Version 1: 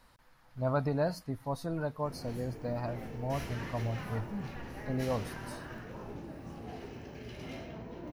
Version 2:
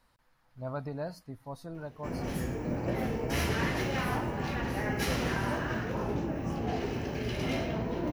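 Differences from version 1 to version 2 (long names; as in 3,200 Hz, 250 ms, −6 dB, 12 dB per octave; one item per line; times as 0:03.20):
speech −6.5 dB
background +11.5 dB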